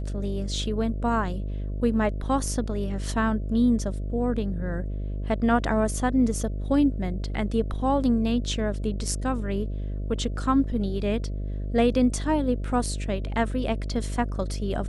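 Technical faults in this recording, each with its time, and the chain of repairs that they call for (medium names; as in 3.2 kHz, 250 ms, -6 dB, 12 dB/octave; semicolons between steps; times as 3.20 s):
buzz 50 Hz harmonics 13 -30 dBFS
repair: de-hum 50 Hz, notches 13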